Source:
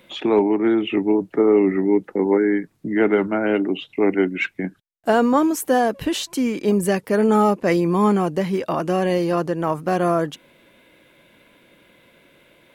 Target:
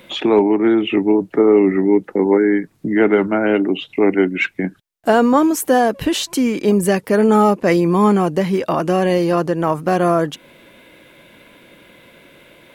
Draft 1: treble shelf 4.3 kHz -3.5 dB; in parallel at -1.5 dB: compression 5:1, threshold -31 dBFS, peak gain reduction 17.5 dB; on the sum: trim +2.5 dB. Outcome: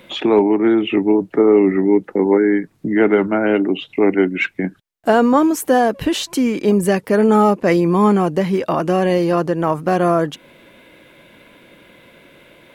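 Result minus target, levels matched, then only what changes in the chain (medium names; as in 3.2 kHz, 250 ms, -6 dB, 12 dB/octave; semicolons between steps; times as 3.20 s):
8 kHz band -2.5 dB
remove: treble shelf 4.3 kHz -3.5 dB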